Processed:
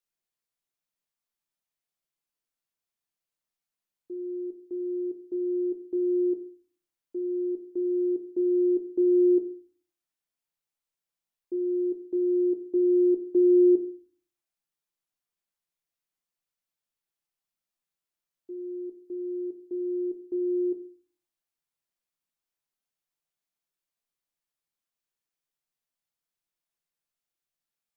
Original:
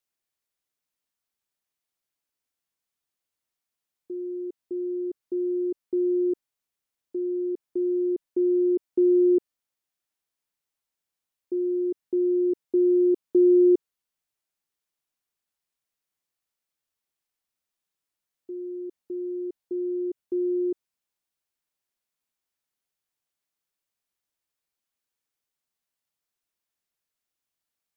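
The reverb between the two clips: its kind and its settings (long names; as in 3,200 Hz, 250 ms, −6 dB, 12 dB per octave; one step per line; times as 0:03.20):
rectangular room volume 210 cubic metres, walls furnished, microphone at 0.81 metres
level −5 dB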